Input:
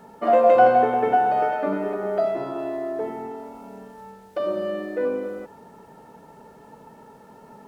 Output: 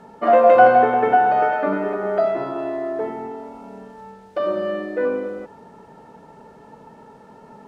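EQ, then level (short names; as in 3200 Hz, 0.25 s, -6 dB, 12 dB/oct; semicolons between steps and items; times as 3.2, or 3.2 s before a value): dynamic EQ 1500 Hz, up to +5 dB, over -37 dBFS, Q 1.1; air absorption 51 m; +2.5 dB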